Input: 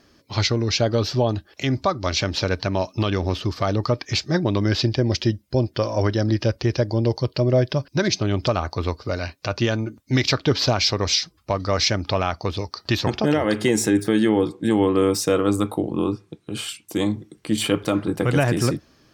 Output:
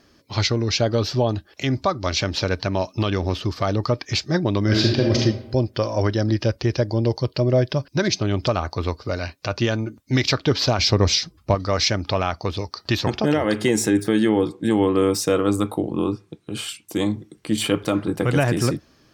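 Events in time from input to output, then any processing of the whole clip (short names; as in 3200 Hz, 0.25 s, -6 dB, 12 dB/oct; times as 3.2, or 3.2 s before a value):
4.63–5.17 reverb throw, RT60 0.87 s, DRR -1 dB
10.79–11.55 low shelf 480 Hz +8.5 dB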